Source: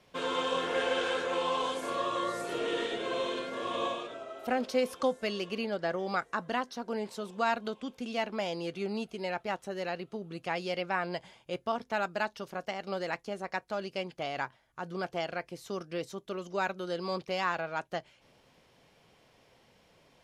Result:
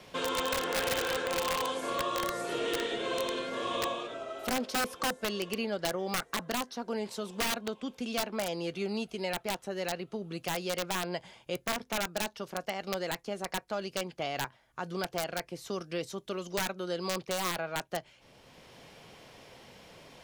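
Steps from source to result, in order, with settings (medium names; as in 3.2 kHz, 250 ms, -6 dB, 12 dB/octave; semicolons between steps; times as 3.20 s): integer overflow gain 23 dB; three bands compressed up and down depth 40%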